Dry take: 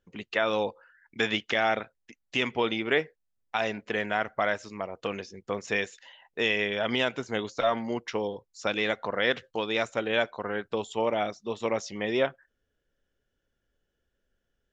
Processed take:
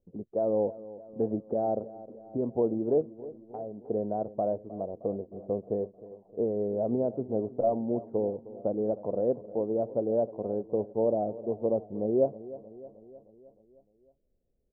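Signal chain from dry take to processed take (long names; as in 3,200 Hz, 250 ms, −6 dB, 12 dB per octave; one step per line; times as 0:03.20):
Butterworth low-pass 680 Hz 36 dB per octave
0:03.01–0:03.84: downward compressor 2 to 1, threshold −44 dBFS, peak gain reduction 9 dB
on a send: repeating echo 310 ms, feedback 59%, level −17 dB
on the sum: level +2 dB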